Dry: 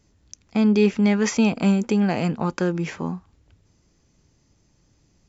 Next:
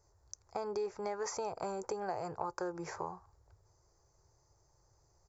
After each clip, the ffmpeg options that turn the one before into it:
-af "firequalizer=gain_entry='entry(120,0);entry(230,-26);entry(360,1);entry(880,9);entry(3000,-20);entry(4600,0);entry(8000,3)':delay=0.05:min_phase=1,acompressor=threshold=-28dB:ratio=4,volume=-7.5dB"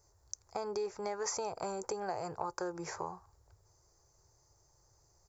-af "highshelf=f=4.1k:g=7.5"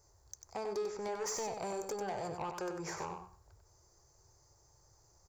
-filter_complex "[0:a]asoftclip=type=tanh:threshold=-35dB,asplit=2[a][b];[b]aecho=0:1:95|190|285:0.473|0.0852|0.0153[c];[a][c]amix=inputs=2:normalize=0,volume=1.5dB"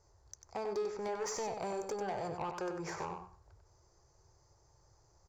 -af "adynamicsmooth=sensitivity=7:basefreq=5.9k,volume=1dB"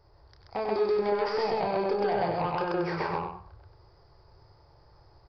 -af "aecho=1:1:29.15|131.2:0.447|1,aresample=11025,aresample=44100,volume=7dB"

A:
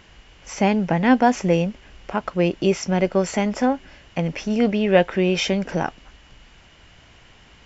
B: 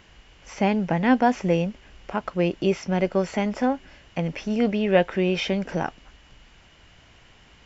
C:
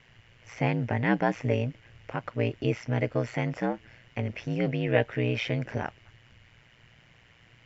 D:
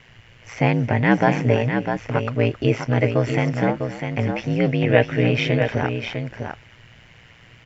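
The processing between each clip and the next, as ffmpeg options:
-filter_complex "[0:a]acrossover=split=4900[a][b];[b]acompressor=threshold=-48dB:ratio=4:attack=1:release=60[c];[a][c]amix=inputs=2:normalize=0,volume=-3dB"
-af "aeval=exprs='val(0)*sin(2*PI*59*n/s)':c=same,equalizer=f=125:t=o:w=1:g=9,equalizer=f=500:t=o:w=1:g=4,equalizer=f=2k:t=o:w=1:g=9,volume=-7dB"
-af "aecho=1:1:268|651:0.158|0.473,volume=8dB"

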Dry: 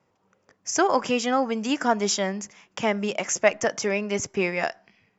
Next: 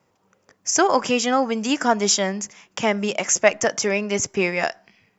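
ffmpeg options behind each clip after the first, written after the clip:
-af "highshelf=f=5.6k:g=7,volume=3dB"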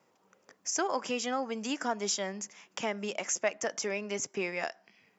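-af "highpass=200,acompressor=threshold=-44dB:ratio=1.5,volume=-2.5dB"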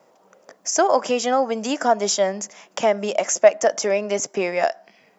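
-af "equalizer=f=100:t=o:w=0.67:g=-7,equalizer=f=630:t=o:w=0.67:g=10,equalizer=f=2.5k:t=o:w=0.67:g=-3,volume=9dB"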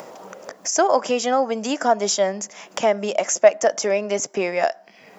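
-af "acompressor=mode=upward:threshold=-25dB:ratio=2.5"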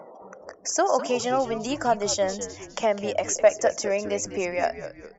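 -filter_complex "[0:a]afftdn=nr=35:nf=-42,asplit=5[a][b][c][d][e];[b]adelay=204,afreqshift=-110,volume=-12dB[f];[c]adelay=408,afreqshift=-220,volume=-19.5dB[g];[d]adelay=612,afreqshift=-330,volume=-27.1dB[h];[e]adelay=816,afreqshift=-440,volume=-34.6dB[i];[a][f][g][h][i]amix=inputs=5:normalize=0,volume=-4.5dB"

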